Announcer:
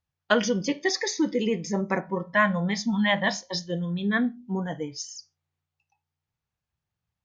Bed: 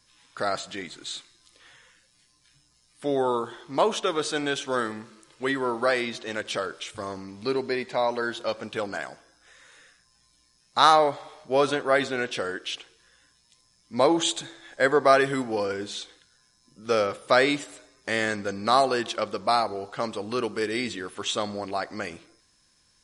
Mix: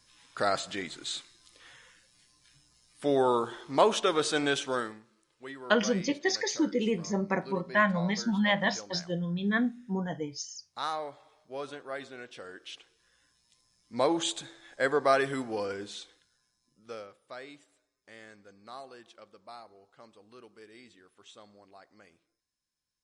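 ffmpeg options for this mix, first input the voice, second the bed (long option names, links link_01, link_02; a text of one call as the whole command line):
ffmpeg -i stem1.wav -i stem2.wav -filter_complex "[0:a]adelay=5400,volume=-3dB[link_01];[1:a]volume=10dB,afade=type=out:start_time=4.56:duration=0.45:silence=0.158489,afade=type=in:start_time=12.35:duration=1.14:silence=0.298538,afade=type=out:start_time=15.71:duration=1.43:silence=0.11885[link_02];[link_01][link_02]amix=inputs=2:normalize=0" out.wav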